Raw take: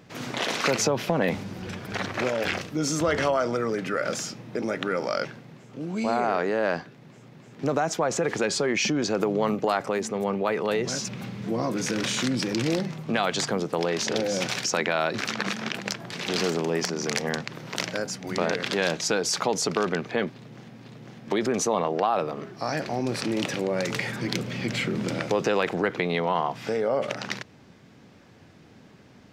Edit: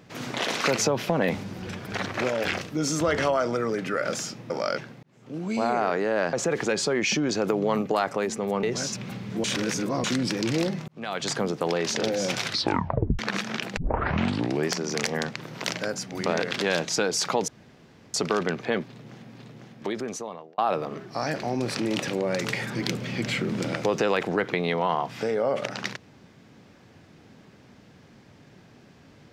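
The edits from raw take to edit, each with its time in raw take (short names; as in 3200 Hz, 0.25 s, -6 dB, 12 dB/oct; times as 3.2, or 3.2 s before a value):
4.5–4.97 cut
5.5–5.84 fade in
6.8–8.06 cut
10.36–10.75 cut
11.56–12.16 reverse
13–13.49 fade in
14.51 tape stop 0.80 s
15.89 tape start 0.92 s
19.6 insert room tone 0.66 s
20.86–22.04 fade out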